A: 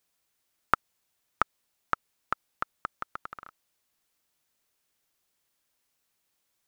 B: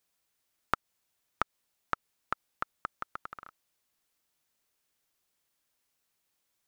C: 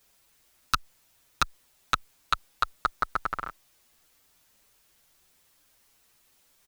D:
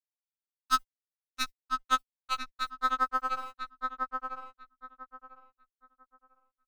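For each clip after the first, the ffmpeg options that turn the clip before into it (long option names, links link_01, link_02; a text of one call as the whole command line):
ffmpeg -i in.wav -af "acompressor=threshold=-25dB:ratio=2,volume=-2dB" out.wav
ffmpeg -i in.wav -filter_complex "[0:a]lowshelf=frequency=62:gain=10.5,aeval=exprs='0.473*sin(PI/2*4.47*val(0)/0.473)':channel_layout=same,asplit=2[link_01][link_02];[link_02]adelay=7,afreqshift=0.87[link_03];[link_01][link_03]amix=inputs=2:normalize=1" out.wav
ffmpeg -i in.wav -filter_complex "[0:a]aeval=exprs='sgn(val(0))*max(abs(val(0))-0.00422,0)':channel_layout=same,asplit=2[link_01][link_02];[link_02]adelay=997,lowpass=frequency=1800:poles=1,volume=-3.5dB,asplit=2[link_03][link_04];[link_04]adelay=997,lowpass=frequency=1800:poles=1,volume=0.25,asplit=2[link_05][link_06];[link_06]adelay=997,lowpass=frequency=1800:poles=1,volume=0.25,asplit=2[link_07][link_08];[link_08]adelay=997,lowpass=frequency=1800:poles=1,volume=0.25[link_09];[link_03][link_05][link_07][link_09]amix=inputs=4:normalize=0[link_10];[link_01][link_10]amix=inputs=2:normalize=0,afftfilt=real='re*3.46*eq(mod(b,12),0)':imag='im*3.46*eq(mod(b,12),0)':win_size=2048:overlap=0.75" out.wav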